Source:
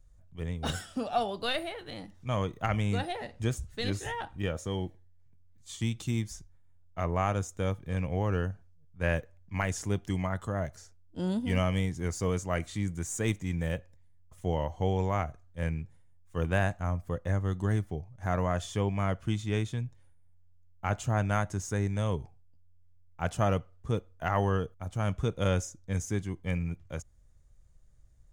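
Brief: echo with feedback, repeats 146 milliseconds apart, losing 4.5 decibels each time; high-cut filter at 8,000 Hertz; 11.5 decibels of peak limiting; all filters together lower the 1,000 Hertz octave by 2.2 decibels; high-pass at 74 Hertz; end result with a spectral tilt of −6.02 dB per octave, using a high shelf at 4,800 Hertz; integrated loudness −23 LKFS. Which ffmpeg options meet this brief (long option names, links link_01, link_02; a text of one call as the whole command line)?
ffmpeg -i in.wav -af "highpass=74,lowpass=8000,equalizer=frequency=1000:width_type=o:gain=-3,highshelf=frequency=4800:gain=-3.5,alimiter=level_in=1.5dB:limit=-24dB:level=0:latency=1,volume=-1.5dB,aecho=1:1:146|292|438|584|730|876|1022|1168|1314:0.596|0.357|0.214|0.129|0.0772|0.0463|0.0278|0.0167|0.01,volume=13dB" out.wav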